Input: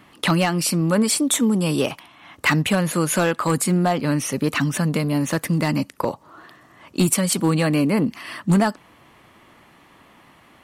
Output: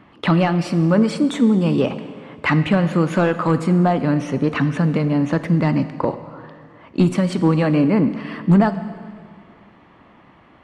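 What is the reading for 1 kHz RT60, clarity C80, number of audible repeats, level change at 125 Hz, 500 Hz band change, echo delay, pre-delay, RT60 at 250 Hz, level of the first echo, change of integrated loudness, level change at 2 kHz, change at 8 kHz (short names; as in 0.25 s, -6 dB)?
1.9 s, 13.0 dB, none, +3.5 dB, +3.0 dB, none, 15 ms, 2.1 s, none, +2.5 dB, -1.0 dB, under -15 dB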